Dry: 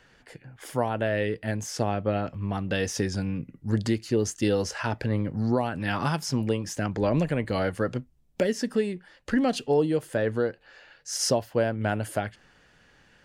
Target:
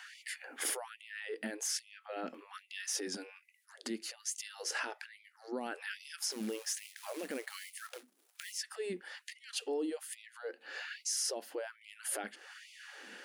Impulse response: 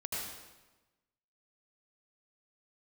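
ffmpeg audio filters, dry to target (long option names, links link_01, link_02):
-filter_complex "[0:a]acompressor=threshold=-40dB:ratio=4,alimiter=level_in=12dB:limit=-24dB:level=0:latency=1:release=43,volume=-12dB,asettb=1/sr,asplit=3[link_01][link_02][link_03];[link_01]atrim=end=6.314[link_04];[link_02]atrim=start=6.31:end=8.58,asetpts=PTS-STARTPTS,afade=type=in:duration=0.004:curve=qsin,afade=type=out:start_time=2.266:duration=0.004:curve=qsin,acrusher=bits=4:mode=log:mix=0:aa=0.000001[link_05];[link_03]atrim=start=8.576[link_06];[link_04][link_05]acrossfade=duration=0.004:curve1=hsin:curve2=qsin[link_07];[link_07][link_06]acrossfade=duration=0.004:curve1=qsin:curve2=hsin,equalizer=frequency=100:width_type=o:width=0.33:gain=7,equalizer=frequency=630:width_type=o:width=0.33:gain=-5,equalizer=frequency=1000:width_type=o:width=0.33:gain=-5,equalizer=frequency=10000:width_type=o:width=0.33:gain=7,afftfilt=real='re*gte(b*sr/1024,200*pow(2000/200,0.5+0.5*sin(2*PI*1.2*pts/sr)))':imag='im*gte(b*sr/1024,200*pow(2000/200,0.5+0.5*sin(2*PI*1.2*pts/sr)))':win_size=1024:overlap=0.75,volume=9.5dB"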